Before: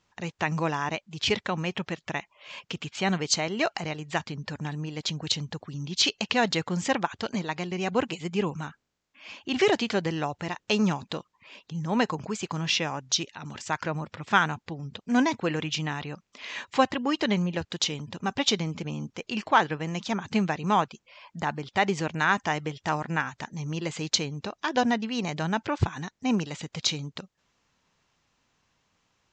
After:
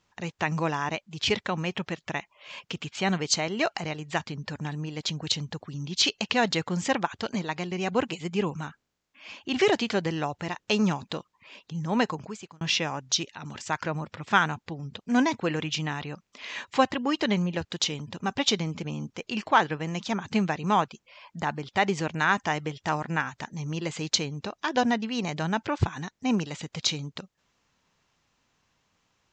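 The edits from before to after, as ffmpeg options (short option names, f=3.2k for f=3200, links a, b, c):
-filter_complex "[0:a]asplit=2[a][b];[a]atrim=end=12.61,asetpts=PTS-STARTPTS,afade=t=out:st=12.03:d=0.58[c];[b]atrim=start=12.61,asetpts=PTS-STARTPTS,afade=t=in:d=0.004:c=hsin[d];[c][d]concat=n=2:v=0:a=1"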